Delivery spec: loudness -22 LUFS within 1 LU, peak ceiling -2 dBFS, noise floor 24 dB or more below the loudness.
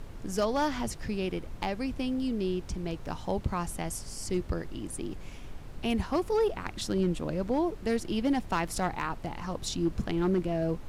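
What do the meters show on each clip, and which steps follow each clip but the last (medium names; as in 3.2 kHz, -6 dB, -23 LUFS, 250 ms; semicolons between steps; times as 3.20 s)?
clipped samples 0.5%; clipping level -20.0 dBFS; noise floor -44 dBFS; noise floor target -56 dBFS; loudness -31.5 LUFS; peak level -20.0 dBFS; loudness target -22.0 LUFS
-> clip repair -20 dBFS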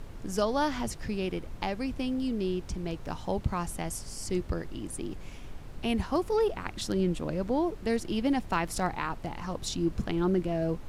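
clipped samples 0.0%; noise floor -44 dBFS; noise floor target -56 dBFS
-> noise print and reduce 12 dB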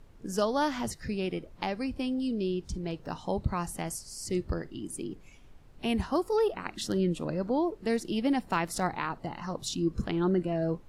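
noise floor -53 dBFS; noise floor target -56 dBFS
-> noise print and reduce 6 dB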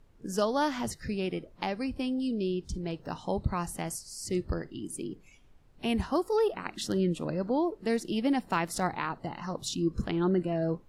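noise floor -58 dBFS; loudness -31.5 LUFS; peak level -16.0 dBFS; loudness target -22.0 LUFS
-> trim +9.5 dB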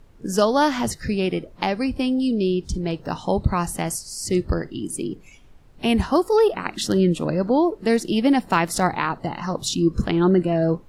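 loudness -22.0 LUFS; peak level -6.5 dBFS; noise floor -48 dBFS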